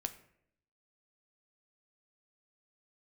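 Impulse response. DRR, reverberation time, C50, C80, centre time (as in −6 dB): 8.5 dB, 0.70 s, 14.0 dB, 16.5 dB, 6 ms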